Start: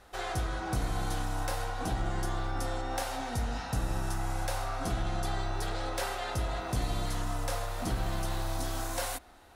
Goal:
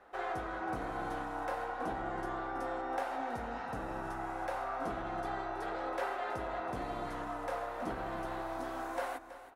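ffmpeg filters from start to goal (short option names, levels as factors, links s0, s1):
-filter_complex "[0:a]acrossover=split=240 2200:gain=0.141 1 0.112[s0][s1][s2];[s0][s1][s2]amix=inputs=3:normalize=0,aecho=1:1:324:0.211"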